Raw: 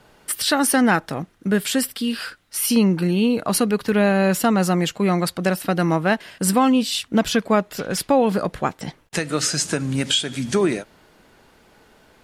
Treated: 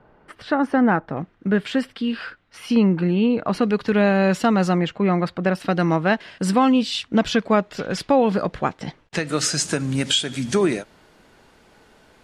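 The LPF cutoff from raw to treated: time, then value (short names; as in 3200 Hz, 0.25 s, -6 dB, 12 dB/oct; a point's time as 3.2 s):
1400 Hz
from 1.17 s 2600 Hz
from 3.63 s 4900 Hz
from 4.78 s 2500 Hz
from 5.55 s 5000 Hz
from 9.27 s 11000 Hz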